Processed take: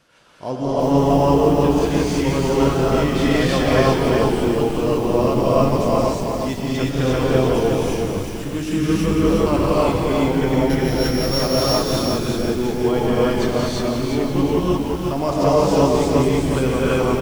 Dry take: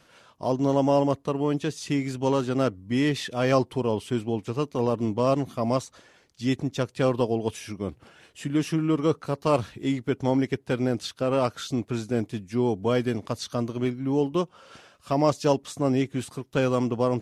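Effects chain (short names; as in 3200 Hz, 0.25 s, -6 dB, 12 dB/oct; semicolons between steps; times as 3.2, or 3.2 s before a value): 10.58–11.6 sample sorter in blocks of 8 samples; on a send: frequency-shifting echo 0.177 s, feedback 58%, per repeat -110 Hz, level -7 dB; on the sum: non-linear reverb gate 0.37 s rising, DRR -7 dB; lo-fi delay 0.363 s, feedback 35%, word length 6-bit, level -4.5 dB; gain -1.5 dB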